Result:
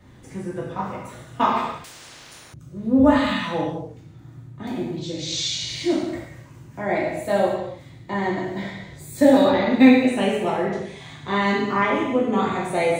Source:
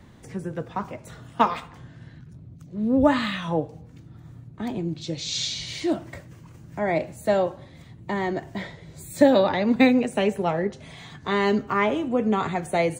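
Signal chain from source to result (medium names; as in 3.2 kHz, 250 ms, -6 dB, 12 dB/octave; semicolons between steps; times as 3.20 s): gated-style reverb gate 340 ms falling, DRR -6 dB; 1.84–2.54 s: spectrum-flattening compressor 10:1; trim -4.5 dB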